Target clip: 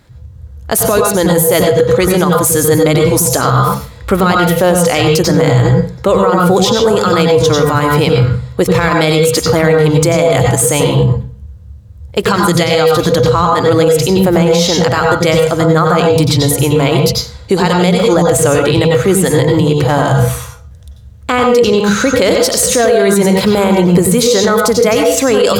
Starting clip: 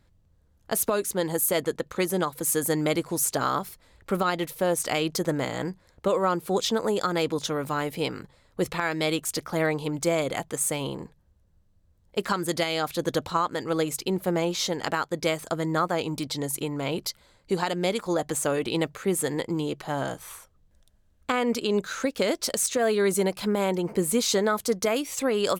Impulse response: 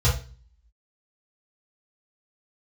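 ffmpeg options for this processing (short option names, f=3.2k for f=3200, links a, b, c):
-filter_complex "[0:a]lowshelf=f=64:g=-11.5,asplit=2[a][b];[1:a]atrim=start_sample=2205,adelay=87[c];[b][c]afir=irnorm=-1:irlink=0,volume=-15dB[d];[a][d]amix=inputs=2:normalize=0,alimiter=level_in=18.5dB:limit=-1dB:release=50:level=0:latency=1,volume=-1dB"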